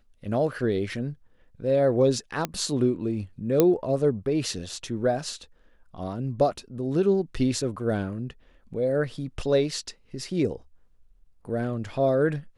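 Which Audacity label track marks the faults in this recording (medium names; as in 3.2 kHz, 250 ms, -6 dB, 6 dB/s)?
2.450000	2.450000	pop -12 dBFS
3.600000	3.600000	pop -6 dBFS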